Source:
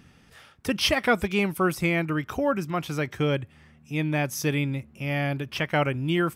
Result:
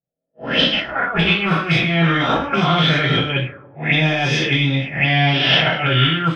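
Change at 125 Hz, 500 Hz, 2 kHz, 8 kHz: +10.0, +4.0, +11.5, −3.0 decibels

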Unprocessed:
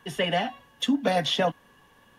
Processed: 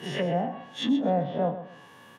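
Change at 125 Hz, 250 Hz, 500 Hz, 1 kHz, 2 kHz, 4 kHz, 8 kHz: +2.5 dB, +1.0 dB, −0.5 dB, −2.0 dB, −8.5 dB, −8.5 dB, can't be measured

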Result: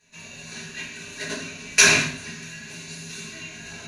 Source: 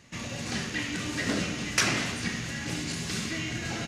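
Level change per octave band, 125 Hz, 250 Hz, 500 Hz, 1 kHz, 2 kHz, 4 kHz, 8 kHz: −3.5, −4.5, +3.5, +2.5, +7.5, +5.5, +10.0 decibels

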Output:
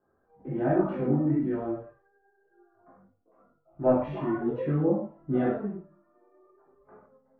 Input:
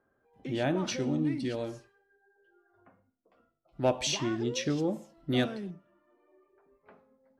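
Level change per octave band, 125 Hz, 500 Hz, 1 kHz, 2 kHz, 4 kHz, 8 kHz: +4.5 dB, +4.5 dB, +3.5 dB, −4.5 dB, below −25 dB, below −40 dB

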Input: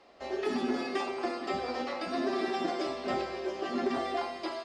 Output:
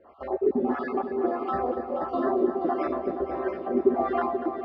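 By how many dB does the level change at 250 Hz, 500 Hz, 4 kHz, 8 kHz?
+6.0 dB, +7.5 dB, below −15 dB, below −25 dB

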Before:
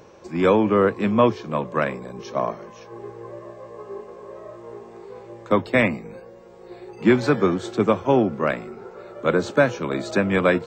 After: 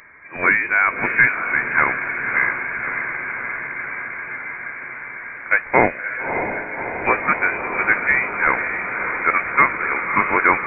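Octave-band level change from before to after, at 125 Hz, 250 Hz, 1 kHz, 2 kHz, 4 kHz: −8.5 dB, −9.0 dB, +6.0 dB, +13.0 dB, below −15 dB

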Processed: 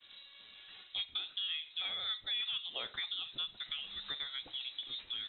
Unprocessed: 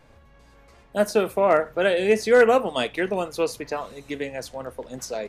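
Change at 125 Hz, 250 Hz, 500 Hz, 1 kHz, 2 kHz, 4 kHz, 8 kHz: below −25 dB, −36.0 dB, −39.5 dB, −27.0 dB, −18.0 dB, +2.5 dB, below −40 dB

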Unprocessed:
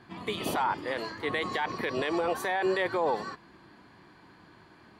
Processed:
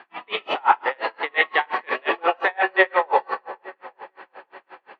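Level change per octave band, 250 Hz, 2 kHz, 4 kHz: −2.0, +11.5, +6.5 decibels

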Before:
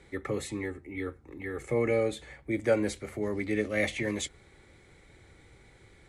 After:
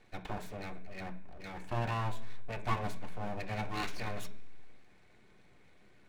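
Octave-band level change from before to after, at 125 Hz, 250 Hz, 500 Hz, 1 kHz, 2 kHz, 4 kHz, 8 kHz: −0.5, −11.5, −14.0, +5.0, −8.0, −5.0, −12.5 decibels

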